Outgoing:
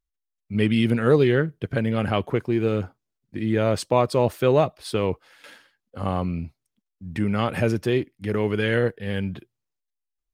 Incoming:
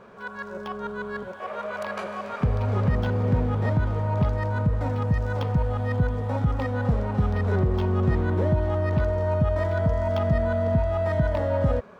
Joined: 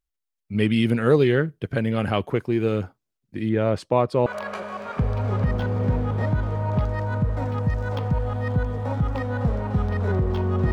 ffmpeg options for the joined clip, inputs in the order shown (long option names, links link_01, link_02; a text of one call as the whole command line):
ffmpeg -i cue0.wav -i cue1.wav -filter_complex "[0:a]asettb=1/sr,asplit=3[link_01][link_02][link_03];[link_01]atrim=end=3.494[link_04];[link_02]atrim=start=3.49:end=4.26,asetpts=PTS-STARTPTS,afade=type=in:duration=0.004:curve=qsin,afade=type=out:start_time=0.766:duration=0.004:curve=qsin,lowpass=frequency=1900:poles=1[link_05];[link_03]atrim=start=4.256[link_06];[link_04][link_05]acrossfade=duration=0.004:curve1=hsin:curve2=qsin[link_07];[link_07][link_06]acrossfade=duration=0.004:curve1=qsin:curve2=hsin,apad=whole_dur=10.72,atrim=end=10.72,atrim=end=4.262[link_08];[1:a]atrim=start=1.698:end=8.16[link_09];[link_08][link_09]acrossfade=duration=0.004:curve1=hsin:curve2=hsin" out.wav